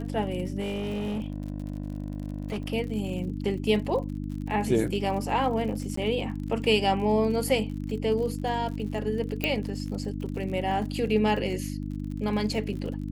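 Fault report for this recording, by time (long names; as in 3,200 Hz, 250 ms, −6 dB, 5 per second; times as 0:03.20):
surface crackle 51 per second −36 dBFS
mains hum 50 Hz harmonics 6 −33 dBFS
0:00.59–0:02.73: clipping −27 dBFS
0:05.96–0:05.97: drop-out 14 ms
0:09.44: click −12 dBFS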